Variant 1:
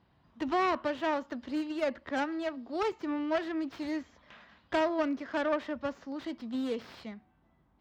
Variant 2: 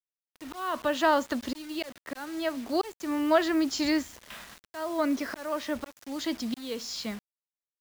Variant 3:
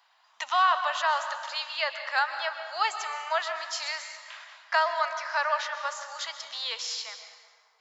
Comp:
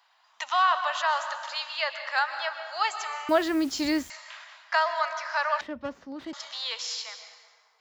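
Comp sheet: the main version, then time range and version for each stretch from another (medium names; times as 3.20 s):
3
3.29–4.10 s: from 2
5.61–6.33 s: from 1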